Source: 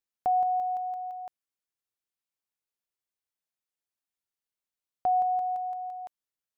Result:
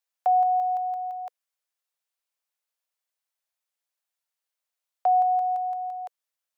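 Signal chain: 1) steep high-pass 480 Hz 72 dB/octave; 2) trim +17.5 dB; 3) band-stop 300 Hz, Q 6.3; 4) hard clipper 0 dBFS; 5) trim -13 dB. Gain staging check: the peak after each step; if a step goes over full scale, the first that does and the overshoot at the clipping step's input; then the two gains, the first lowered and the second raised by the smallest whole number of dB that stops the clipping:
-19.5 dBFS, -2.0 dBFS, -2.0 dBFS, -2.0 dBFS, -15.0 dBFS; nothing clips

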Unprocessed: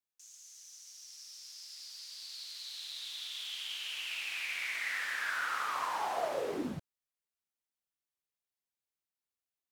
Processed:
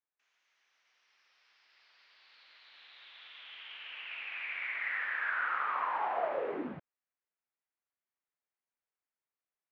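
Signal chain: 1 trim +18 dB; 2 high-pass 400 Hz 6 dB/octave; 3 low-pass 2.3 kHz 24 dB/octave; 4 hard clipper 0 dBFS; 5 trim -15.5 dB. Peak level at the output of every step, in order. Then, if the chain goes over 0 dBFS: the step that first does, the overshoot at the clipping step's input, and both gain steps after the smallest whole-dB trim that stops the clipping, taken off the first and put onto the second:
-4.5 dBFS, -5.5 dBFS, -5.5 dBFS, -5.5 dBFS, -21.0 dBFS; nothing clips

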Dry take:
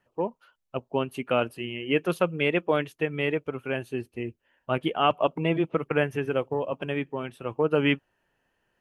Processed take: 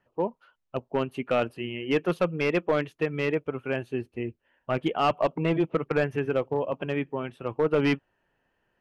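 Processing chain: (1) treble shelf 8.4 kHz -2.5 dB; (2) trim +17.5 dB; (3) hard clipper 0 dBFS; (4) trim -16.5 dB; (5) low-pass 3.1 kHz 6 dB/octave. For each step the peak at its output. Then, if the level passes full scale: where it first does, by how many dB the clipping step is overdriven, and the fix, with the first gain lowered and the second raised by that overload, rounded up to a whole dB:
-9.0 dBFS, +8.5 dBFS, 0.0 dBFS, -16.5 dBFS, -16.5 dBFS; step 2, 8.5 dB; step 2 +8.5 dB, step 4 -7.5 dB

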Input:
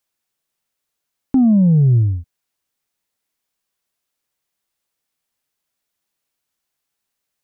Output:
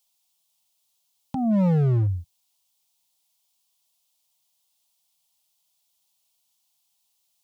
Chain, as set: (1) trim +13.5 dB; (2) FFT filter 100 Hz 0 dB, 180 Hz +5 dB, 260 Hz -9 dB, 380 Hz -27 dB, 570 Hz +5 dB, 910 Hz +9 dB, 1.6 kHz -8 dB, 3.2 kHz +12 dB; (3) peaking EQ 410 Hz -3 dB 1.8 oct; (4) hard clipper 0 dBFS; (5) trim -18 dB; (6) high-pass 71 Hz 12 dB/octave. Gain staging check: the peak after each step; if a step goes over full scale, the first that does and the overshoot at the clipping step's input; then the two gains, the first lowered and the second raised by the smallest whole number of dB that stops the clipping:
+4.5 dBFS, +10.0 dBFS, +9.0 dBFS, 0.0 dBFS, -18.0 dBFS, -14.0 dBFS; step 1, 9.0 dB; step 1 +4.5 dB, step 5 -9 dB

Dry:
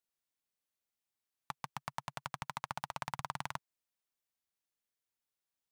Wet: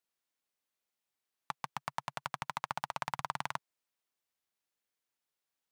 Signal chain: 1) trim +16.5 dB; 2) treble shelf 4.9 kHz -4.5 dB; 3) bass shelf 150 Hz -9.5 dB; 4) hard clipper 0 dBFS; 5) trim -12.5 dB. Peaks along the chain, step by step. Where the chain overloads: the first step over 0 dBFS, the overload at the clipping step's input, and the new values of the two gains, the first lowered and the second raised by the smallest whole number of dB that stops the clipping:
-2.0 dBFS, -3.5 dBFS, -4.0 dBFS, -4.0 dBFS, -16.5 dBFS; nothing clips

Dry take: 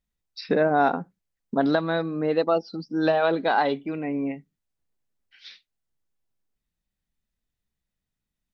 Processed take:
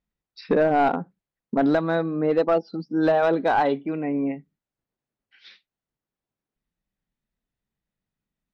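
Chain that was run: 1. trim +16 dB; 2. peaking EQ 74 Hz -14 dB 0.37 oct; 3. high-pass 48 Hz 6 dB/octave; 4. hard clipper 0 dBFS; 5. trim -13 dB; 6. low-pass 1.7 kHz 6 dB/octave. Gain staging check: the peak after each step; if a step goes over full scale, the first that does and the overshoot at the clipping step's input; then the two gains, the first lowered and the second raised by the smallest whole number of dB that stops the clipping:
+7.5 dBFS, +8.0 dBFS, +8.5 dBFS, 0.0 dBFS, -13.0 dBFS, -13.0 dBFS; step 1, 8.5 dB; step 1 +7 dB, step 5 -4 dB

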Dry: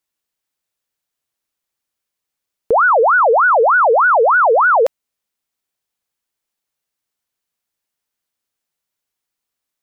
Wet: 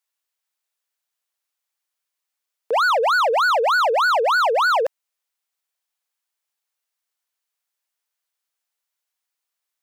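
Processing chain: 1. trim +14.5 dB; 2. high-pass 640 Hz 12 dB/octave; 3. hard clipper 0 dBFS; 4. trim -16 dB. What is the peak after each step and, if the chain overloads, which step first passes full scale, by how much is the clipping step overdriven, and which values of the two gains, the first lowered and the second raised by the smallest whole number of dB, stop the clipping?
+6.0 dBFS, +6.5 dBFS, 0.0 dBFS, -16.0 dBFS; step 1, 6.5 dB; step 1 +7.5 dB, step 4 -9 dB

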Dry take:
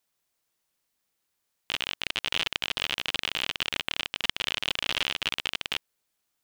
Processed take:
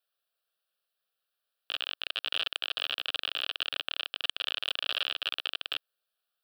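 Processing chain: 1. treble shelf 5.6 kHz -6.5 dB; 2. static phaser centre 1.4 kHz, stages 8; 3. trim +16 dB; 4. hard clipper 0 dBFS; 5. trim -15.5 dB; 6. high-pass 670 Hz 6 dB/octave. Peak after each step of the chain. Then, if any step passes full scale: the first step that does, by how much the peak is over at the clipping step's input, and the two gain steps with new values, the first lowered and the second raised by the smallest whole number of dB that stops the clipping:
-6.5 dBFS, -10.0 dBFS, +6.0 dBFS, 0.0 dBFS, -15.5 dBFS, -13.5 dBFS; step 3, 6.0 dB; step 3 +10 dB, step 5 -9.5 dB

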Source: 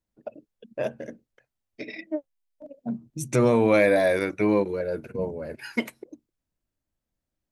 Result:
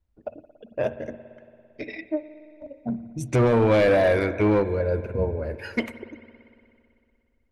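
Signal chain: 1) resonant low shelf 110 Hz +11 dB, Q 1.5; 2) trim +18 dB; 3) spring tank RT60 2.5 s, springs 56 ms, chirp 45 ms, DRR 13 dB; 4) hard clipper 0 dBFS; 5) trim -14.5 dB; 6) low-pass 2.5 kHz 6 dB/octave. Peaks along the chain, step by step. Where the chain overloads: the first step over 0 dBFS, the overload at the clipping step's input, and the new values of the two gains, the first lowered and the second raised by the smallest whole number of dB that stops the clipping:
-9.0 dBFS, +9.0 dBFS, +9.5 dBFS, 0.0 dBFS, -14.5 dBFS, -14.5 dBFS; step 2, 9.5 dB; step 2 +8 dB, step 5 -4.5 dB

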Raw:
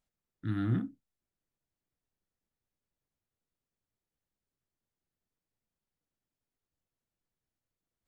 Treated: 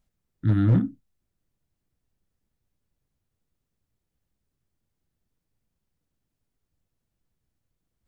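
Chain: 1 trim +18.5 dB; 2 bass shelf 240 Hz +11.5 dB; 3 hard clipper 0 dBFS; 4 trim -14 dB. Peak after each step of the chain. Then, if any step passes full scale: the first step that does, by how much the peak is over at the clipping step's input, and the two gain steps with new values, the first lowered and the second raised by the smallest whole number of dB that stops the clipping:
-1.0 dBFS, +7.0 dBFS, 0.0 dBFS, -14.0 dBFS; step 2, 7.0 dB; step 1 +11.5 dB, step 4 -7 dB

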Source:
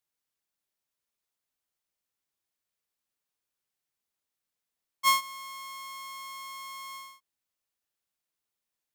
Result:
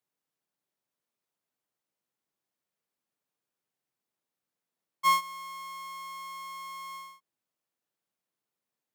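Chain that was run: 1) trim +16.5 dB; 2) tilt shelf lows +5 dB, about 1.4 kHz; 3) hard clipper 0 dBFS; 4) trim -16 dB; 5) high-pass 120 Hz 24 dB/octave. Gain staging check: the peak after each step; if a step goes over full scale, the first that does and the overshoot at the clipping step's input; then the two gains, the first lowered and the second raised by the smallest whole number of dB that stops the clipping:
+2.0 dBFS, +4.0 dBFS, 0.0 dBFS, -16.0 dBFS, -16.0 dBFS; step 1, 4.0 dB; step 1 +12.5 dB, step 4 -12 dB

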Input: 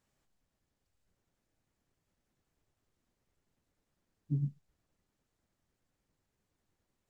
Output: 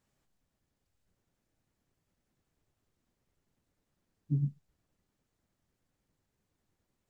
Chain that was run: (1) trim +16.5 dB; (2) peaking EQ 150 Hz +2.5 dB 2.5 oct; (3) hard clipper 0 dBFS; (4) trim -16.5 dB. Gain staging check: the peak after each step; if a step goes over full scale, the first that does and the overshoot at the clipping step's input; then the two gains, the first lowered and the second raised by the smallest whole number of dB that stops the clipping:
-6.5 dBFS, -4.0 dBFS, -4.0 dBFS, -20.5 dBFS; nothing clips

